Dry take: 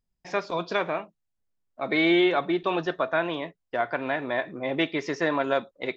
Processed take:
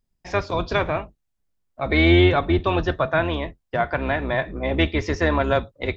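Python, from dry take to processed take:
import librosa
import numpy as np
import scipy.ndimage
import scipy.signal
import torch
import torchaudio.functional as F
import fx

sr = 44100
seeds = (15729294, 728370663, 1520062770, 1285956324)

y = fx.octave_divider(x, sr, octaves=2, level_db=3.0)
y = F.gain(torch.from_numpy(y), 4.0).numpy()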